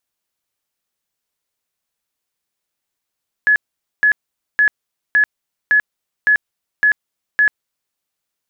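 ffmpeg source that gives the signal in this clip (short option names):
-f lavfi -i "aevalsrc='0.355*sin(2*PI*1700*mod(t,0.56))*lt(mod(t,0.56),151/1700)':d=4.48:s=44100"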